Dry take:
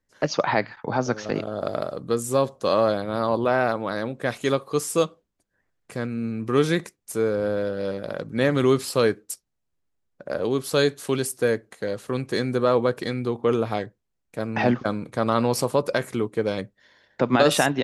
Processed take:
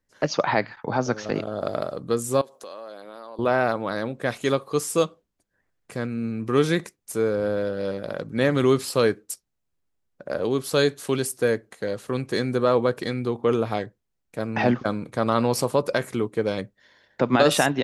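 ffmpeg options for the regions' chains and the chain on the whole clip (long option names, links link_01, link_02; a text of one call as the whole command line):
ffmpeg -i in.wav -filter_complex "[0:a]asettb=1/sr,asplit=3[link_01][link_02][link_03];[link_01]atrim=end=2.414[link_04];[link_02]atrim=start=2.41:end=3.39,asetpts=PTS-STARTPTS,afade=type=in:duration=0.004:curve=qsin,afade=type=out:start_time=0.976:duration=0.004:curve=qsin,highpass=340,highshelf=frequency=9400:gain=9.5,acompressor=threshold=-39dB:ratio=4:attack=3.2:release=140:knee=1:detection=peak[link_05];[link_03]atrim=start=3.386[link_06];[link_04][link_05]acrossfade=duration=0.004:curve1=hsin:curve2=qsin[link_07];[link_07][link_06]acrossfade=duration=0.004:curve1=qsin:curve2=hsin" out.wav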